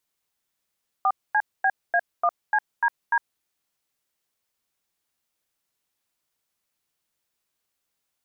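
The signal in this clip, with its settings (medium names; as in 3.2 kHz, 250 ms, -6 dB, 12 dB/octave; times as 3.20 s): DTMF "4CBA1CDD", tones 57 ms, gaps 239 ms, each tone -20 dBFS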